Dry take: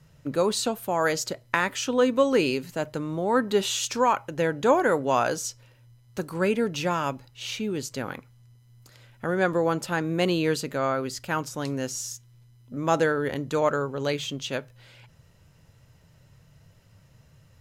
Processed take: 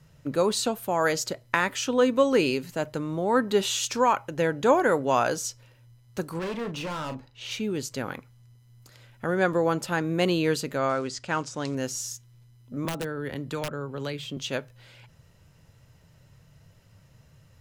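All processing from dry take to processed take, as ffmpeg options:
ffmpeg -i in.wav -filter_complex "[0:a]asettb=1/sr,asplit=3[link_01][link_02][link_03];[link_01]atrim=end=6.394[link_04];[link_02]atrim=start=6.39:end=7.51,asetpts=PTS-STARTPTS,afade=type=in:duration=0.004:curve=qsin,afade=type=out:start_time=1.116:duration=0.004:curve=qsin,aemphasis=mode=reproduction:type=50kf,volume=30dB,asoftclip=hard,volume=-30dB,asplit=2[link_05][link_06];[link_06]adelay=38,volume=-9dB[link_07];[link_05][link_07]amix=inputs=2:normalize=0,atrim=end_sample=49392[link_08];[link_03]atrim=start=7.506[link_09];[link_04][link_08]acrossfade=duration=0.004:curve1=hsin:curve2=qsin[link_10];[link_10][link_09]acrossfade=duration=0.004:curve1=qsin:curve2=hsin,asettb=1/sr,asplit=3[link_11][link_12][link_13];[link_11]atrim=end=10.894[link_14];[link_12]atrim=start=10.89:end=11.75,asetpts=PTS-STARTPTS,afade=type=in:duration=0.004:curve=qsin,afade=type=out:start_time=0.856:duration=0.004:curve=qsin,lowshelf=frequency=79:gain=-8,acrusher=bits=6:mode=log:mix=0:aa=0.000001,lowpass=frequency=7900:width=0.5412,lowpass=frequency=7900:width=1.3066[link_15];[link_13]atrim=start=11.746[link_16];[link_14][link_15]acrossfade=duration=0.004:curve1=hsin:curve2=qsin[link_17];[link_17][link_16]acrossfade=duration=0.004:curve1=qsin:curve2=hsin,asettb=1/sr,asplit=3[link_18][link_19][link_20];[link_18]atrim=end=12.854[link_21];[link_19]atrim=start=12.85:end=14.37,asetpts=PTS-STARTPTS,afade=type=in:duration=0.004:curve=qsin,afade=type=out:start_time=1.516:duration=0.004:curve=qsin,equalizer=frequency=6400:width=6.3:gain=-10.5,aeval=exprs='(mod(4.47*val(0)+1,2)-1)/4.47':channel_layout=same,acrossover=split=270|1100[link_22][link_23][link_24];[link_22]acompressor=threshold=-33dB:ratio=4[link_25];[link_23]acompressor=threshold=-36dB:ratio=4[link_26];[link_24]acompressor=threshold=-37dB:ratio=4[link_27];[link_25][link_26][link_27]amix=inputs=3:normalize=0[link_28];[link_20]atrim=start=14.366[link_29];[link_21][link_28]acrossfade=duration=0.004:curve1=hsin:curve2=qsin[link_30];[link_30][link_29]acrossfade=duration=0.004:curve1=qsin:curve2=hsin" out.wav

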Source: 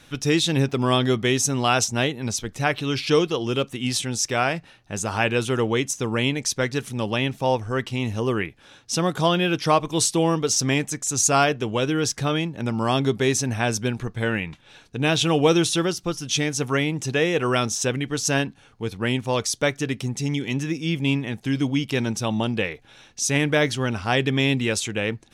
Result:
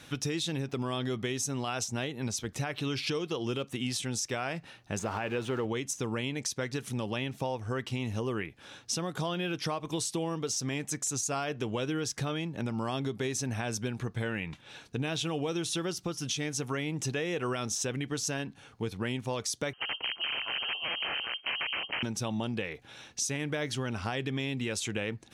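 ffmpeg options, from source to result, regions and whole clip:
ffmpeg -i in.wav -filter_complex "[0:a]asettb=1/sr,asplit=3[link_01][link_02][link_03];[link_01]atrim=end=4.994[link_04];[link_02]atrim=start=4.99:end=5.65,asetpts=PTS-STARTPTS,afade=type=in:duration=0.004:curve=qsin,afade=type=out:start_time=0.656:duration=0.004:curve=qsin,aeval=exprs='val(0)+0.5*0.0316*sgn(val(0))':channel_layout=same,lowpass=frequency=1700:poles=1,lowshelf=frequency=210:gain=-6.5[link_05];[link_03]atrim=start=5.646[link_06];[link_04][link_05]acrossfade=duration=0.004:curve1=hsin:curve2=qsin[link_07];[link_07][link_06]acrossfade=duration=0.004:curve1=qsin:curve2=hsin,asettb=1/sr,asplit=3[link_08][link_09][link_10];[link_08]atrim=end=19.734[link_11];[link_09]atrim=start=19.73:end=22.03,asetpts=PTS-STARTPTS,afade=type=in:duration=0.004:curve=qsin,afade=type=out:start_time=2.296:duration=0.004:curve=qsin,aeval=exprs='val(0)*sin(2*PI*160*n/s)':channel_layout=same,aeval=exprs='(mod(11.2*val(0)+1,2)-1)/11.2':channel_layout=same,lowpass=frequency=2700:width_type=q:width=0.5098,lowpass=frequency=2700:width_type=q:width=0.6013,lowpass=frequency=2700:width_type=q:width=0.9,lowpass=frequency=2700:width_type=q:width=2.563,afreqshift=-3200[link_12];[link_10]atrim=start=22.026[link_13];[link_11][link_12]acrossfade=duration=0.004:curve1=hsin:curve2=qsin[link_14];[link_14][link_13]acrossfade=duration=0.004:curve1=qsin:curve2=hsin,alimiter=limit=-16.5dB:level=0:latency=1:release=204,acompressor=threshold=-31dB:ratio=3,highpass=57" out.wav

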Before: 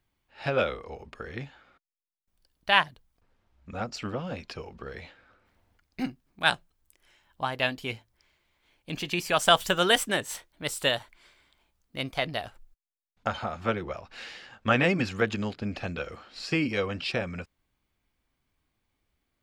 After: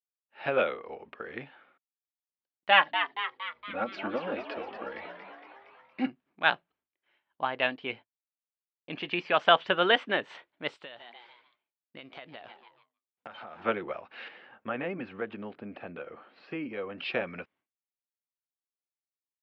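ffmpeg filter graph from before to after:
ffmpeg -i in.wav -filter_complex "[0:a]asettb=1/sr,asplit=3[link_01][link_02][link_03];[link_01]atrim=end=2.704[link_04];[link_02]atrim=start=2.7:end=6.07,asetpts=PTS-STARTPTS,afade=type=in:duration=0.004:curve=qsin,afade=type=out:start_time=3.366:duration=0.004:curve=qsin,aecho=1:1:3.6:0.74,atrim=end_sample=148617,asplit=9[link_05][link_06][link_07][link_08][link_09][link_10][link_11][link_12][link_13];[link_06]adelay=232,afreqshift=110,volume=-8.5dB[link_14];[link_07]adelay=464,afreqshift=220,volume=-12.9dB[link_15];[link_08]adelay=696,afreqshift=330,volume=-17.4dB[link_16];[link_09]adelay=928,afreqshift=440,volume=-21.8dB[link_17];[link_10]adelay=1160,afreqshift=550,volume=-26.2dB[link_18];[link_11]adelay=1392,afreqshift=660,volume=-30.7dB[link_19];[link_12]adelay=1624,afreqshift=770,volume=-35.1dB[link_20];[link_13]adelay=1856,afreqshift=880,volume=-39.6dB[link_21];[link_05][link_14][link_15][link_16][link_17][link_18][link_19][link_20][link_21]amix=inputs=9:normalize=0,atrim=end_sample=148617[link_22];[link_03]atrim=start=6.066[link_23];[link_04][link_22]acrossfade=duration=0.004:curve1=hsin:curve2=qsin[link_24];[link_24][link_23]acrossfade=duration=0.004:curve1=qsin:curve2=hsin,asettb=1/sr,asplit=3[link_25][link_26][link_27];[link_25]atrim=end=7.764[link_28];[link_26]atrim=start=7.76:end=10.1,asetpts=PTS-STARTPTS,afade=type=in:duration=0.004:curve=qsin,afade=type=out:start_time=2.336:duration=0.004:curve=qsin,lowpass=6100,agate=range=-33dB:threshold=-52dB:ratio=3:release=100:detection=peak[link_29];[link_27]atrim=start=10.096[link_30];[link_28][link_29]acrossfade=duration=0.004:curve1=hsin:curve2=qsin[link_31];[link_31][link_30]acrossfade=duration=0.004:curve1=qsin:curve2=hsin,asettb=1/sr,asplit=3[link_32][link_33][link_34];[link_32]atrim=end=10.764[link_35];[link_33]atrim=start=10.76:end=13.64,asetpts=PTS-STARTPTS,afade=type=in:duration=0.004:curve=qsin,afade=type=out:start_time=2.876:duration=0.004:curve=qsin,aemphasis=mode=production:type=cd,asplit=5[link_36][link_37][link_38][link_39][link_40];[link_37]adelay=147,afreqshift=120,volume=-21dB[link_41];[link_38]adelay=294,afreqshift=240,volume=-27.2dB[link_42];[link_39]adelay=441,afreqshift=360,volume=-33.4dB[link_43];[link_40]adelay=588,afreqshift=480,volume=-39.6dB[link_44];[link_36][link_41][link_42][link_43][link_44]amix=inputs=5:normalize=0,atrim=end_sample=127008,acompressor=threshold=-39dB:ratio=12:attack=3.2:release=140:knee=1:detection=peak[link_45];[link_34]atrim=start=13.636[link_46];[link_35][link_45]acrossfade=duration=0.004:curve1=hsin:curve2=qsin[link_47];[link_47][link_46]acrossfade=duration=0.004:curve1=qsin:curve2=hsin,asettb=1/sr,asplit=3[link_48][link_49][link_50];[link_48]atrim=end=14.284[link_51];[link_49]atrim=start=14.28:end=16.98,asetpts=PTS-STARTPTS,afade=type=in:duration=0.004:curve=qsin,afade=type=out:start_time=2.696:duration=0.004:curve=qsin,acompressor=threshold=-39dB:ratio=1.5:attack=3.2:release=140:knee=1:detection=peak,highshelf=frequency=2300:gain=-12[link_52];[link_50]atrim=start=16.976[link_53];[link_51][link_52]acrossfade=duration=0.004:curve1=hsin:curve2=qsin[link_54];[link_54][link_53]acrossfade=duration=0.004:curve1=qsin:curve2=hsin,lowpass=frequency=3100:width=0.5412,lowpass=frequency=3100:width=1.3066,agate=range=-33dB:threshold=-56dB:ratio=3:detection=peak,highpass=260" out.wav

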